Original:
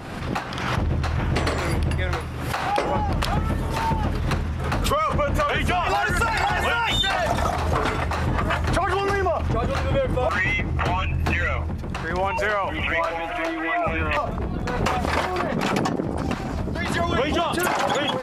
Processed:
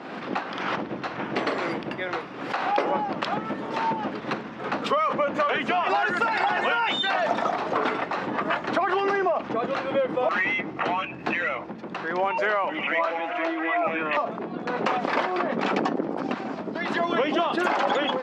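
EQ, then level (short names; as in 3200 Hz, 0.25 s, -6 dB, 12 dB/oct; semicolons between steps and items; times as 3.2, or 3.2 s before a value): HPF 220 Hz 24 dB/oct; air absorption 170 m; 0.0 dB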